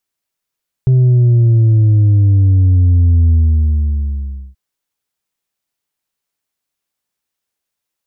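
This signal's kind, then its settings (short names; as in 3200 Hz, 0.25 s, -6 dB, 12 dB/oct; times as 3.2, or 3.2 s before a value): sub drop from 130 Hz, over 3.68 s, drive 3 dB, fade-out 1.24 s, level -7 dB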